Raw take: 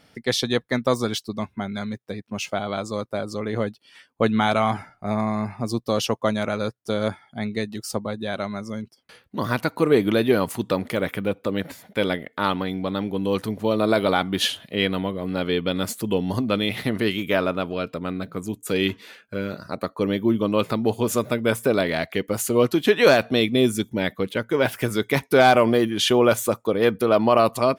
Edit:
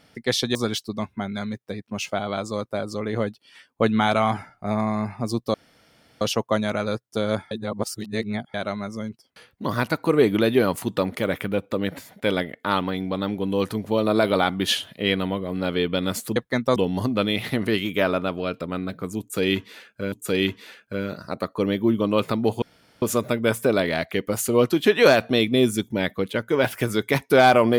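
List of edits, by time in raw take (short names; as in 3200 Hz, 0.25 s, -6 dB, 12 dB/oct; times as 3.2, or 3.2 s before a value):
0.55–0.95 move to 16.09
5.94 insert room tone 0.67 s
7.24–8.27 reverse
18.53–19.45 loop, 2 plays
21.03 insert room tone 0.40 s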